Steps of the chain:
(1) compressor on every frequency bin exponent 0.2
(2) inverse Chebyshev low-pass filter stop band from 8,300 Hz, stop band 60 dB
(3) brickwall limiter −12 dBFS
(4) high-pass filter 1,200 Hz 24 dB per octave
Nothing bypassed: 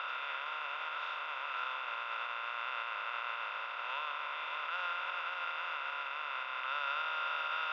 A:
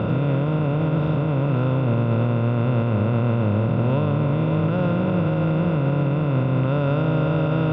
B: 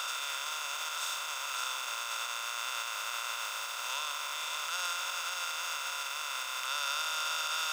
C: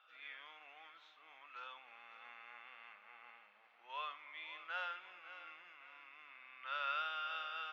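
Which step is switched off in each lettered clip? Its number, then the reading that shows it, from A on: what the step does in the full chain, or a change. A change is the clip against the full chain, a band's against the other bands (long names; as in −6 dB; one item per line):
4, change in crest factor −8.0 dB
2, 4 kHz band +9.5 dB
1, change in crest factor +5.0 dB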